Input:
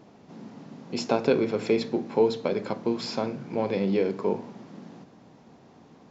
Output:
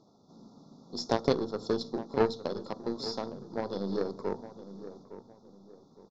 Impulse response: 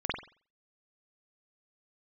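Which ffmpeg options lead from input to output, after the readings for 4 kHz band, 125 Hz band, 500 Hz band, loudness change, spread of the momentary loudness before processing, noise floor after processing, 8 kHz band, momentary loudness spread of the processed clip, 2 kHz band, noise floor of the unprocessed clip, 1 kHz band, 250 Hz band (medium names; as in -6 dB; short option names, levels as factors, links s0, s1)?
-2.5 dB, -5.5 dB, -6.5 dB, -6.0 dB, 20 LU, -62 dBFS, no reading, 17 LU, -7.0 dB, -54 dBFS, -3.5 dB, -6.5 dB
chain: -filter_complex "[0:a]afftfilt=real='re*(1-between(b*sr/4096,1400,3400))':imag='im*(1-between(b*sr/4096,1400,3400))':win_size=4096:overlap=0.75,aeval=exprs='0.355*(cos(1*acos(clip(val(0)/0.355,-1,1)))-cos(1*PI/2))+0.0562*(cos(3*acos(clip(val(0)/0.355,-1,1)))-cos(3*PI/2))+0.0631*(cos(4*acos(clip(val(0)/0.355,-1,1)))-cos(4*PI/2))+0.0447*(cos(6*acos(clip(val(0)/0.355,-1,1)))-cos(6*PI/2))+0.00562*(cos(7*acos(clip(val(0)/0.355,-1,1)))-cos(7*PI/2))':c=same,lowpass=f=5500:t=q:w=2.4,asplit=2[s0][s1];[s1]adelay=861,lowpass=f=1400:p=1,volume=0.224,asplit=2[s2][s3];[s3]adelay=861,lowpass=f=1400:p=1,volume=0.35,asplit=2[s4][s5];[s5]adelay=861,lowpass=f=1400:p=1,volume=0.35[s6];[s2][s4][s6]amix=inputs=3:normalize=0[s7];[s0][s7]amix=inputs=2:normalize=0,volume=0.75"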